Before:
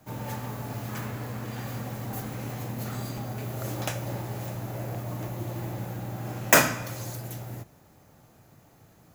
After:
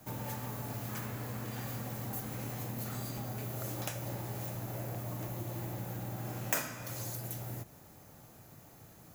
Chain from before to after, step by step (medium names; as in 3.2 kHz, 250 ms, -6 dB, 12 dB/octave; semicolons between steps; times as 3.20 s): treble shelf 7.5 kHz +8 dB; compression 2.5:1, threshold -39 dBFS, peak gain reduction 19.5 dB